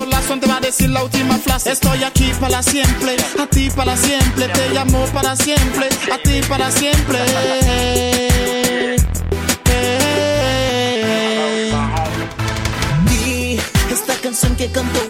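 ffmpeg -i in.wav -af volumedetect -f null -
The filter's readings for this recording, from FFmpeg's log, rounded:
mean_volume: -15.5 dB
max_volume: -3.6 dB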